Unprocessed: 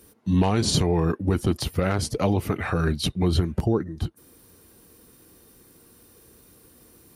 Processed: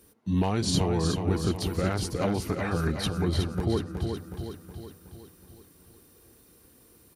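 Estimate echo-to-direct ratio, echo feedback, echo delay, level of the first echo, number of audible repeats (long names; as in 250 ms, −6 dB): −4.5 dB, 53%, 369 ms, −6.0 dB, 6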